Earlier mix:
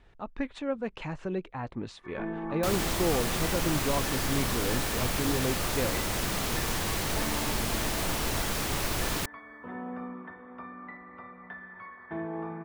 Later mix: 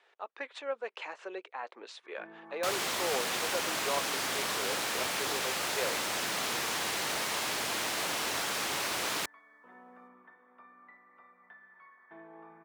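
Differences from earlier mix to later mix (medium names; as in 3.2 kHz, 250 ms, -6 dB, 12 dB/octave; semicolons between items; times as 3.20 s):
speech: add Chebyshev high-pass 420 Hz, order 3; first sound -12.0 dB; master: add frequency weighting A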